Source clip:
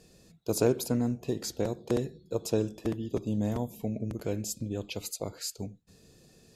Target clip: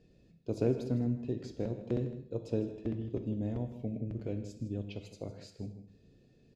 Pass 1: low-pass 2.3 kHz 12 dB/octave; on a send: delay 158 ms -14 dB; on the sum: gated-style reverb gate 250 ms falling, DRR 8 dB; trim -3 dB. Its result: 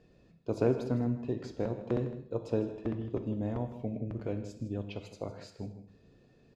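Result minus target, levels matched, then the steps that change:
1 kHz band +6.5 dB
add after low-pass: peaking EQ 1.1 kHz -12 dB 1.5 oct

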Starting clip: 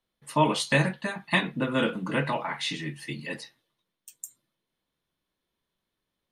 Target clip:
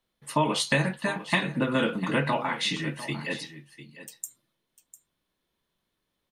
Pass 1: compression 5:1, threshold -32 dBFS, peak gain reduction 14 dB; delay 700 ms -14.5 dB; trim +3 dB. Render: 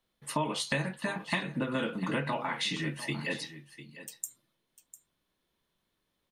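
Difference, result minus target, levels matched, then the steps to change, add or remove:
compression: peak gain reduction +7 dB
change: compression 5:1, threshold -23 dBFS, peak gain reduction 7 dB

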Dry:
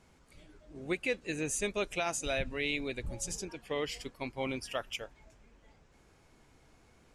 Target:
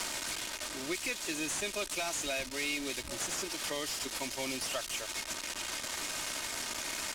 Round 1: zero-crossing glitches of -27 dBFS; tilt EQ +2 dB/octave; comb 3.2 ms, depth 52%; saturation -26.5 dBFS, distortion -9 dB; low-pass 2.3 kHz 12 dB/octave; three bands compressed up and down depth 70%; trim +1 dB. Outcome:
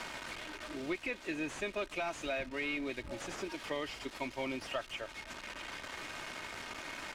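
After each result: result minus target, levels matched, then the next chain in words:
8 kHz band -12.0 dB; zero-crossing glitches: distortion -6 dB
zero-crossing glitches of -27 dBFS; tilt EQ +2 dB/octave; comb 3.2 ms, depth 52%; saturation -26.5 dBFS, distortion -9 dB; low-pass 6.8 kHz 12 dB/octave; three bands compressed up and down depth 70%; trim +1 dB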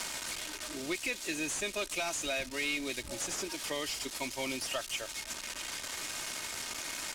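zero-crossing glitches: distortion -6 dB
zero-crossing glitches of -20 dBFS; tilt EQ +2 dB/octave; comb 3.2 ms, depth 52%; saturation -26.5 dBFS, distortion -5 dB; low-pass 6.8 kHz 12 dB/octave; three bands compressed up and down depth 70%; trim +1 dB

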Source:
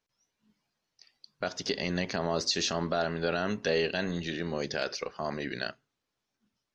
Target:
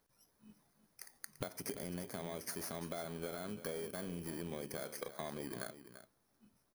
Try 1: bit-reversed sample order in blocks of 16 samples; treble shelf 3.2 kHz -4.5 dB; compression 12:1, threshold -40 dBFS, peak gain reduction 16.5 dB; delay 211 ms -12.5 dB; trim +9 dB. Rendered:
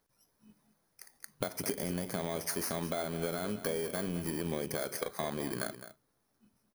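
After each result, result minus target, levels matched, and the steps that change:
compression: peak gain reduction -8 dB; echo 129 ms early
change: compression 12:1, threshold -48.5 dBFS, peak gain reduction 24.5 dB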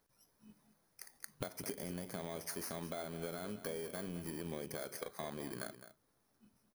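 echo 129 ms early
change: delay 340 ms -12.5 dB

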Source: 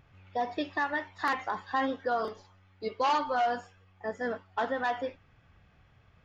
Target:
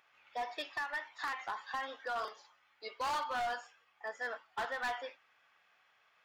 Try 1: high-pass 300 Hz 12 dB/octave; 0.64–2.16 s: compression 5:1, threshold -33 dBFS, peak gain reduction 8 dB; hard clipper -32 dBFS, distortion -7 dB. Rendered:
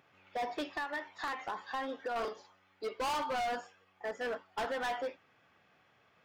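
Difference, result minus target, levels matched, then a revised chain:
250 Hz band +10.0 dB
high-pass 930 Hz 12 dB/octave; 0.64–2.16 s: compression 5:1, threshold -33 dBFS, peak gain reduction 7 dB; hard clipper -32 dBFS, distortion -9 dB

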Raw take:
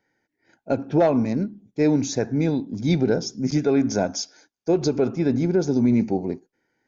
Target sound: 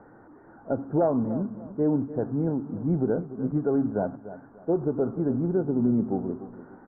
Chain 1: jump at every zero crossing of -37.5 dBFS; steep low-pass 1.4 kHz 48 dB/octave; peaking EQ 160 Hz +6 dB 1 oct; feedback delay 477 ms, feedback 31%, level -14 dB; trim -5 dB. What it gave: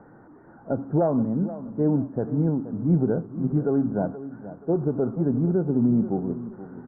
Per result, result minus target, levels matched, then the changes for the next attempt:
echo 182 ms late; 125 Hz band +3.0 dB
change: feedback delay 295 ms, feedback 31%, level -14 dB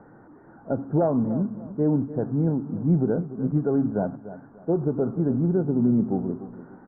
125 Hz band +3.0 dB
remove: peaking EQ 160 Hz +6 dB 1 oct

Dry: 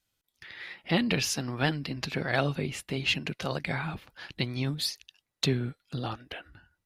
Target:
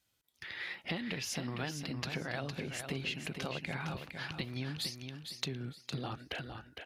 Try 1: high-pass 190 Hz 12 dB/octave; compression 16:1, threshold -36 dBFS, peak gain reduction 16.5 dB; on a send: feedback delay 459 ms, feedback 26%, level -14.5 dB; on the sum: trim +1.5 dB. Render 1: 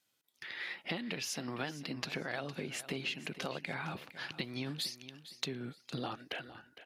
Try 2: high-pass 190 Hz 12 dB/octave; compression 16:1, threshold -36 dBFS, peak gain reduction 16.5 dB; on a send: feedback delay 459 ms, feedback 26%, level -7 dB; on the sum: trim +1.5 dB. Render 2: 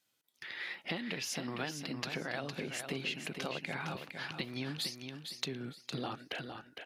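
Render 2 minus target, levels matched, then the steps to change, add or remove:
125 Hz band -4.5 dB
change: high-pass 50 Hz 12 dB/octave

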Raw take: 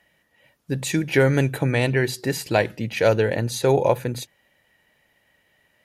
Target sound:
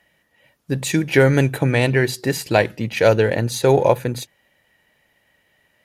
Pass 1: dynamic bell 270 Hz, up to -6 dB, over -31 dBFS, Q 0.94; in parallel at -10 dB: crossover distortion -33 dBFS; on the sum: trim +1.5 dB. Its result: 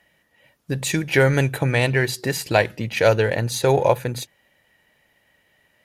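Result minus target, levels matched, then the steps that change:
250 Hz band -2.5 dB
remove: dynamic bell 270 Hz, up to -6 dB, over -31 dBFS, Q 0.94

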